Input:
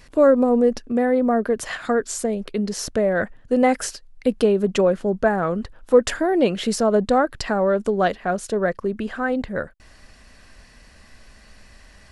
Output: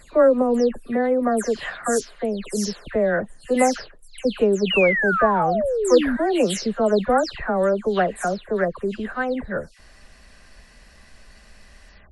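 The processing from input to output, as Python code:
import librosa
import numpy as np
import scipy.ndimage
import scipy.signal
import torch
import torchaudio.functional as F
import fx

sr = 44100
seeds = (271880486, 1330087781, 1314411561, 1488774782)

y = fx.spec_delay(x, sr, highs='early', ms=229)
y = fx.peak_eq(y, sr, hz=270.0, db=-3.5, octaves=0.61)
y = fx.spec_paint(y, sr, seeds[0], shape='fall', start_s=4.7, length_s=1.47, low_hz=230.0, high_hz=3000.0, level_db=-22.0)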